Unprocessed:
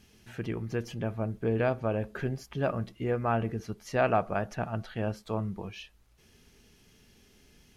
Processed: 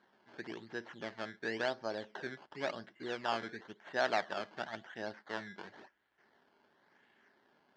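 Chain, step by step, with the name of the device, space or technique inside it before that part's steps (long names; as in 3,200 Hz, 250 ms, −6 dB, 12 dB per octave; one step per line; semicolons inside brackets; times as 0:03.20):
circuit-bent sampling toy (sample-and-hold swept by an LFO 16×, swing 100% 0.95 Hz; loudspeaker in its box 450–4,300 Hz, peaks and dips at 480 Hz −8 dB, 680 Hz −4 dB, 1,200 Hz −7 dB, 1,700 Hz +5 dB, 2,500 Hz −9 dB, 3,700 Hz −5 dB)
level −1.5 dB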